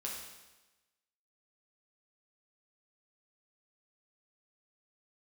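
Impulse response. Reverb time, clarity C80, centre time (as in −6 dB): 1.1 s, 4.5 dB, 57 ms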